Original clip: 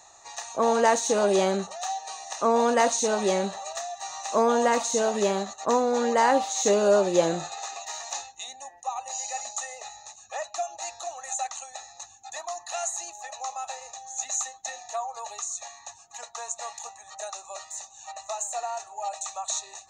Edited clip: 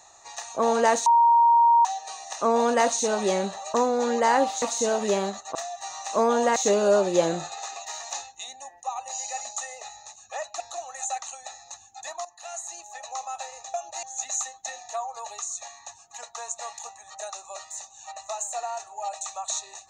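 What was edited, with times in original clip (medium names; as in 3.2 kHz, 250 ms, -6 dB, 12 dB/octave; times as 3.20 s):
1.06–1.85 s: bleep 936 Hz -14 dBFS
3.74–4.75 s: swap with 5.68–6.56 s
10.60–10.89 s: move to 14.03 s
12.54–13.38 s: fade in linear, from -13 dB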